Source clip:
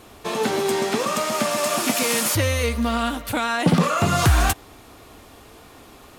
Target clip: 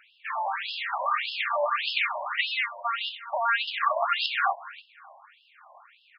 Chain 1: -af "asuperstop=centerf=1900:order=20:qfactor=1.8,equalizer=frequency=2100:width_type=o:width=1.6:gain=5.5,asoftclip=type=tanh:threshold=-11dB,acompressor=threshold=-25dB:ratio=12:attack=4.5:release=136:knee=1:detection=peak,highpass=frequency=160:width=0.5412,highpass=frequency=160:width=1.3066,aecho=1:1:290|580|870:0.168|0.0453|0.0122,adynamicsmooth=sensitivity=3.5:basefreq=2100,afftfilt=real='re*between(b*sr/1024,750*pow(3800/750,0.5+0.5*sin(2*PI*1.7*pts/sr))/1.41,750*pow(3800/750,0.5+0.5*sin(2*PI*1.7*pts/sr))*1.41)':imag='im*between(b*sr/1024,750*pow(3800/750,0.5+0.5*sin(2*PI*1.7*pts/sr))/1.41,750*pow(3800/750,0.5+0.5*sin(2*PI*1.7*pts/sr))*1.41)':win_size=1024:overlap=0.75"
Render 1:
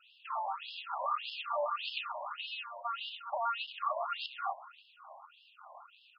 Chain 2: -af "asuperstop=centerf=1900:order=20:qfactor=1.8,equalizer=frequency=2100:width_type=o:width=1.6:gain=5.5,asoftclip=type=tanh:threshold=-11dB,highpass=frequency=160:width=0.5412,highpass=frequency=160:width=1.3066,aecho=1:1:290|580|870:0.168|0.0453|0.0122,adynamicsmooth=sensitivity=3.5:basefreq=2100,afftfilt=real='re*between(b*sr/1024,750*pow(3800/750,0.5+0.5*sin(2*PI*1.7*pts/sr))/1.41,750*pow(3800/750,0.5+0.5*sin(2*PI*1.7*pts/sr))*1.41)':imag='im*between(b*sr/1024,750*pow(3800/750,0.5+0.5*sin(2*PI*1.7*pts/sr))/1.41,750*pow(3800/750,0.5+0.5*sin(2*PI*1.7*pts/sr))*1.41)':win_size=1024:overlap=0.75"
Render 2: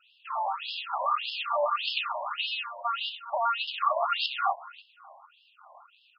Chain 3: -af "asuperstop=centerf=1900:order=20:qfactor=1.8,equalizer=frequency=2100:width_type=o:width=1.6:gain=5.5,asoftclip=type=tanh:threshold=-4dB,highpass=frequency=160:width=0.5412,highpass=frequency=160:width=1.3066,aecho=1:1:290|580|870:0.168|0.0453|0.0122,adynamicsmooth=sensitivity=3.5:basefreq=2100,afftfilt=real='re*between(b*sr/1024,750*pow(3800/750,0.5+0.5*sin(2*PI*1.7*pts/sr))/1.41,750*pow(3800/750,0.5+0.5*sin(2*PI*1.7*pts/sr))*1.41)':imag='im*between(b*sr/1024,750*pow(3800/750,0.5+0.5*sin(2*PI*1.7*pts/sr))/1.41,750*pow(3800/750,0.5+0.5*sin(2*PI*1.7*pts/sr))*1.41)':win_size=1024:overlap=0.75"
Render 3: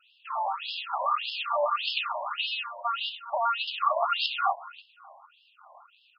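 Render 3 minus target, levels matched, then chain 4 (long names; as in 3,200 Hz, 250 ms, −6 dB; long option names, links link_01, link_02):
2,000 Hz band −5.5 dB
-af "equalizer=frequency=2100:width_type=o:width=1.6:gain=5.5,asoftclip=type=tanh:threshold=-4dB,highpass=frequency=160:width=0.5412,highpass=frequency=160:width=1.3066,aecho=1:1:290|580|870:0.168|0.0453|0.0122,adynamicsmooth=sensitivity=3.5:basefreq=2100,afftfilt=real='re*between(b*sr/1024,750*pow(3800/750,0.5+0.5*sin(2*PI*1.7*pts/sr))/1.41,750*pow(3800/750,0.5+0.5*sin(2*PI*1.7*pts/sr))*1.41)':imag='im*between(b*sr/1024,750*pow(3800/750,0.5+0.5*sin(2*PI*1.7*pts/sr))/1.41,750*pow(3800/750,0.5+0.5*sin(2*PI*1.7*pts/sr))*1.41)':win_size=1024:overlap=0.75"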